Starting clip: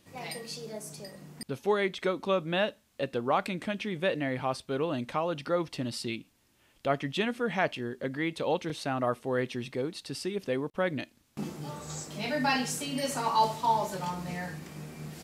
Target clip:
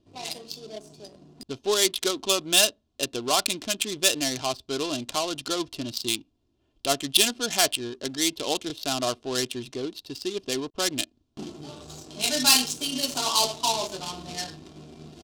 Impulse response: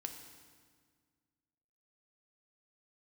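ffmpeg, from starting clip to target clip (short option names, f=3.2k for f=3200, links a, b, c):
-af "aecho=1:1:2.9:0.55,adynamicsmooth=sensitivity=6:basefreq=600,aexciter=amount=6.5:drive=9:freq=3k"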